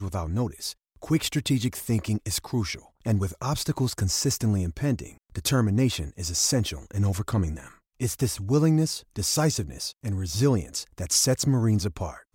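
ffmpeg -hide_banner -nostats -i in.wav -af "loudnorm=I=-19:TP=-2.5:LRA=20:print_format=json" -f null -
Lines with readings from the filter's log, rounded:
"input_i" : "-26.1",
"input_tp" : "-10.0",
"input_lra" : "1.7",
"input_thresh" : "-36.2",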